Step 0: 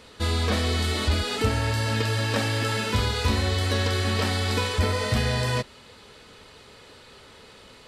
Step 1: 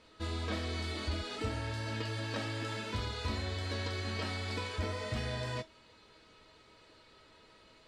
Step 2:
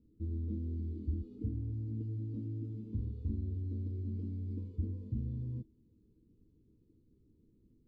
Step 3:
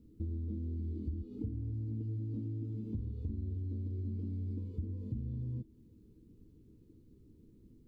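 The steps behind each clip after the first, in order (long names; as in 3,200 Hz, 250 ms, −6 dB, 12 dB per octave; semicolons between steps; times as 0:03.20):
high-frequency loss of the air 59 metres; tuned comb filter 320 Hz, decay 0.18 s, harmonics all, mix 80%; level −1 dB
inverse Chebyshev low-pass filter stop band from 620 Hz, stop band 40 dB; level +1.5 dB
downward compressor 4 to 1, threshold −44 dBFS, peak gain reduction 12 dB; level +7.5 dB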